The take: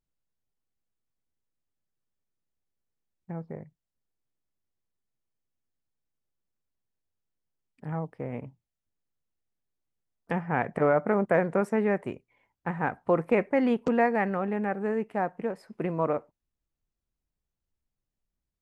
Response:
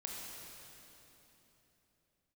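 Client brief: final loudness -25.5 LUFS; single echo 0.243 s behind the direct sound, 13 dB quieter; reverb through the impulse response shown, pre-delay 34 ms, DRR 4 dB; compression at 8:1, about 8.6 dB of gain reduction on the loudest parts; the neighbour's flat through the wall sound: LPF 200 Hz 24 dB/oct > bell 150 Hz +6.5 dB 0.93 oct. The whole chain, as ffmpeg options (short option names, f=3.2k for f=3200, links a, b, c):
-filter_complex "[0:a]acompressor=threshold=-27dB:ratio=8,aecho=1:1:243:0.224,asplit=2[a][b];[1:a]atrim=start_sample=2205,adelay=34[c];[b][c]afir=irnorm=-1:irlink=0,volume=-3.5dB[d];[a][d]amix=inputs=2:normalize=0,lowpass=f=200:w=0.5412,lowpass=f=200:w=1.3066,equalizer=f=150:t=o:w=0.93:g=6.5,volume=11.5dB"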